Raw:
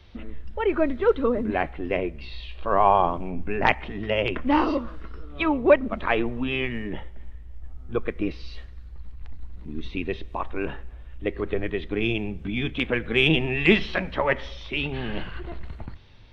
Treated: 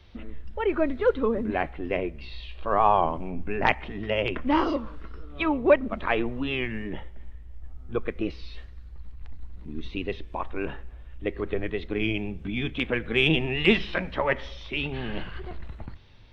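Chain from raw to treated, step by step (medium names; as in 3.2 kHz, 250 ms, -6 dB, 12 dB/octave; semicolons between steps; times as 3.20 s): warped record 33 1/3 rpm, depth 100 cents; trim -2 dB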